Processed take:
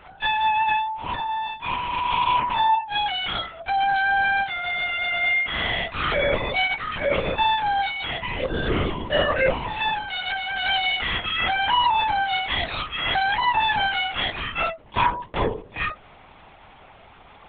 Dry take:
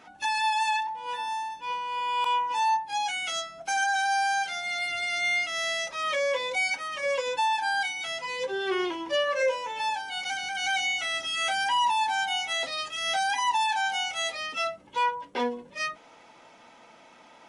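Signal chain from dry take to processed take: LPC vocoder at 8 kHz whisper; gain +5 dB

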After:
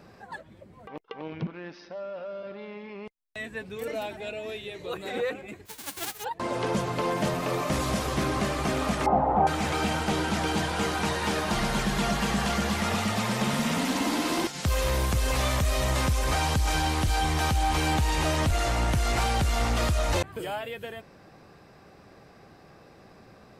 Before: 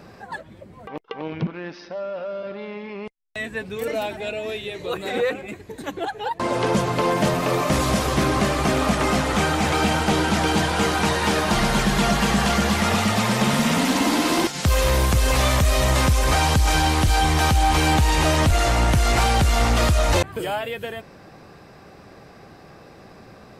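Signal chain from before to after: 5.65–6.23 spectral whitening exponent 0.1; 9.06–9.47 synth low-pass 800 Hz, resonance Q 5.6; gain -7 dB

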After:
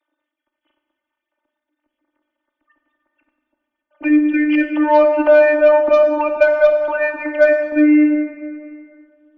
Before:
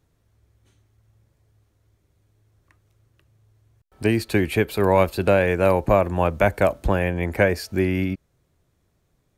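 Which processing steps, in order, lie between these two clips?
sine-wave speech; robotiser 299 Hz; added harmonics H 4 -28 dB, 6 -29 dB, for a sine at -8 dBFS; plate-style reverb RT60 2.5 s, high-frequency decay 0.55×, DRR 4.5 dB; gain +7.5 dB

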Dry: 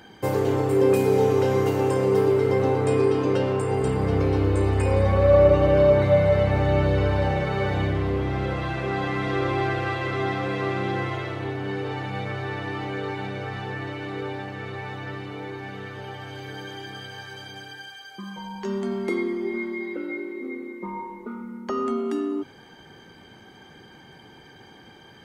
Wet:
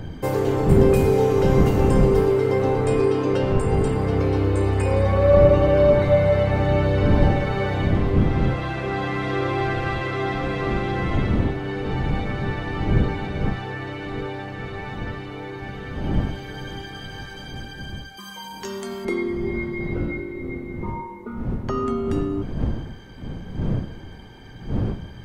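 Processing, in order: wind noise 170 Hz -27 dBFS; 18.17–19.05 RIAA curve recording; gain +1 dB

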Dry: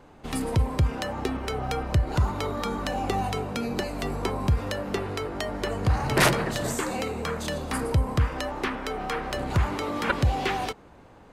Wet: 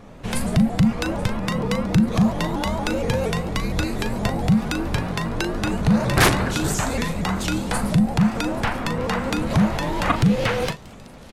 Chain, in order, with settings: in parallel at 0 dB: compressor, threshold -32 dBFS, peak gain reduction 15 dB; on the sum: frequency shift -270 Hz; doubler 38 ms -10 dB; thin delay 0.835 s, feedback 68%, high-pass 3200 Hz, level -19.5 dB; shaped vibrato saw up 4.3 Hz, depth 160 cents; gain +2.5 dB

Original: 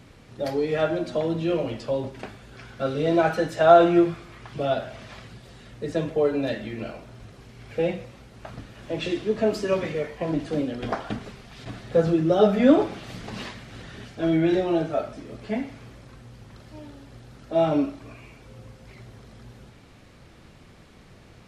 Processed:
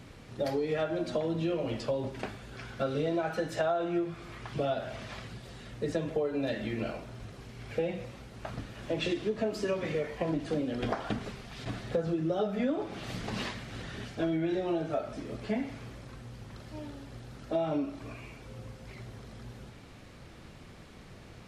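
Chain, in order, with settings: compressor 10:1, threshold -27 dBFS, peak gain reduction 18 dB

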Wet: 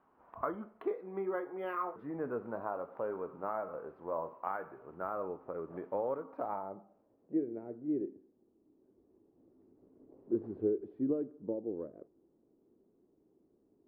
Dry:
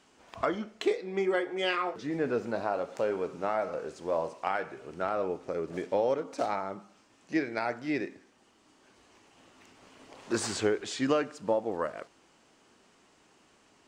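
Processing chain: dynamic EQ 770 Hz, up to -4 dB, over -40 dBFS, Q 2.1; low-pass sweep 1100 Hz -> 370 Hz, 6.37–7.53; air absorption 130 m; decimation joined by straight lines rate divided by 3×; gain -8 dB

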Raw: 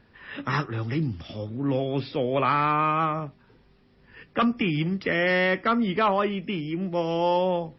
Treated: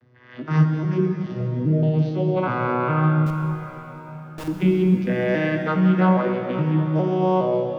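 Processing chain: arpeggiated vocoder major triad, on B2, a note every 0.411 s; 1.41–1.83 elliptic low-pass 620 Hz; 3.26–4.48 Schmitt trigger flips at -28.5 dBFS; plate-style reverb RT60 4.1 s, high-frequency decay 1×, DRR 2 dB; gain +3 dB

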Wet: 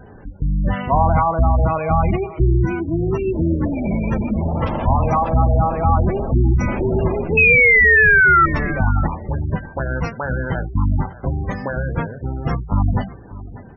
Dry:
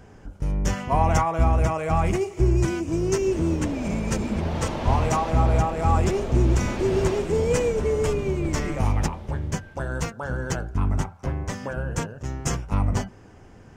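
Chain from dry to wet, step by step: CVSD 32 kbps; dynamic EQ 400 Hz, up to -6 dB, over -38 dBFS, Q 2.4; painted sound fall, 7.37–8.46, 1300–2600 Hz -18 dBFS; in parallel at -2.5 dB: limiter -15 dBFS, peak gain reduction 7 dB; on the sum: low shelf 140 Hz -2.5 dB; echo 0.591 s -17.5 dB; vibrato 10 Hz 6.4 cents; spectral gate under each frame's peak -20 dB strong; gain +3 dB

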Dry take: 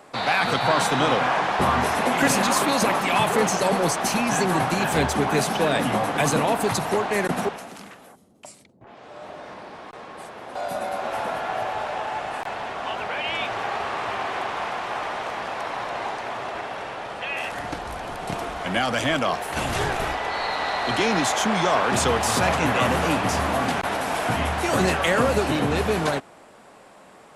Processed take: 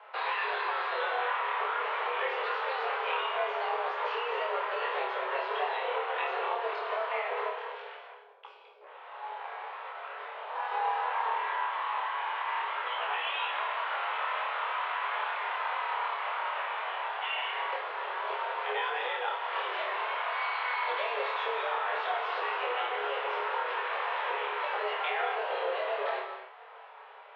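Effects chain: compressor, threshold -27 dBFS, peak gain reduction 11.5 dB; chorus voices 2, 0.23 Hz, delay 20 ms, depth 4.1 ms; flutter echo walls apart 4.8 m, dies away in 0.32 s; non-linear reverb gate 0.29 s flat, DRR 5.5 dB; mistuned SSB +240 Hz 180–3200 Hz; gain -1 dB

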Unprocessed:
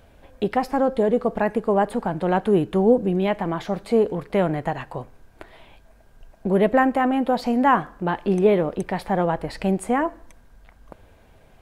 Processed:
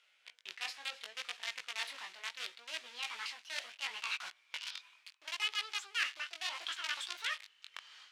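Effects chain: speed glide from 89% -> 197%; in parallel at -3 dB: companded quantiser 2-bit; on the sum: AGC gain up to 13 dB; chorus 0.71 Hz, delay 16 ms, depth 6 ms; reverse; compressor 12:1, threshold -26 dBFS, peak gain reduction 20.5 dB; reverse; ladder band-pass 3500 Hz, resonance 25%; gain +10.5 dB

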